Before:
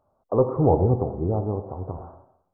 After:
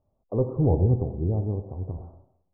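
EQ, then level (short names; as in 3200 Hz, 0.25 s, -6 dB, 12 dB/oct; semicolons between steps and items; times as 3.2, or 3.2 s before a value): Bessel low-pass 620 Hz, order 2; low shelf 72 Hz +6 dB; low shelf 380 Hz +8 dB; -8.0 dB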